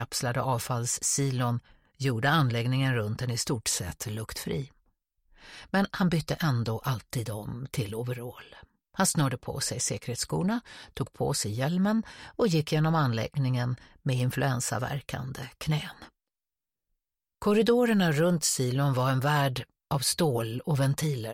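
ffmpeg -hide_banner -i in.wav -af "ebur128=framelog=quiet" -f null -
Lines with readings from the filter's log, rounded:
Integrated loudness:
  I:         -28.4 LUFS
  Threshold: -38.8 LUFS
Loudness range:
  LRA:         5.4 LU
  Threshold: -49.2 LUFS
  LRA low:   -31.8 LUFS
  LRA high:  -26.3 LUFS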